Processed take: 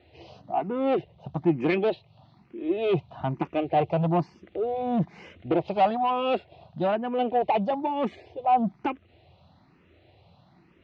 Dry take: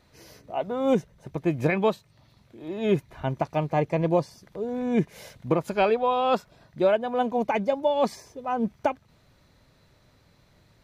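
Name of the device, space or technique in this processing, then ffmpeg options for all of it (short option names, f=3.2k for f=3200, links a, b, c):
barber-pole phaser into a guitar amplifier: -filter_complex "[0:a]asplit=2[a][b];[b]afreqshift=1.1[c];[a][c]amix=inputs=2:normalize=1,asoftclip=type=tanh:threshold=-25dB,highpass=83,equalizer=f=83:t=q:w=4:g=10,equalizer=f=180:t=q:w=4:g=4,equalizer=f=340:t=q:w=4:g=9,equalizer=f=740:t=q:w=4:g=10,equalizer=f=1.6k:t=q:w=4:g=-5,equalizer=f=2.8k:t=q:w=4:g=7,lowpass=f=3.9k:w=0.5412,lowpass=f=3.9k:w=1.3066,volume=2.5dB"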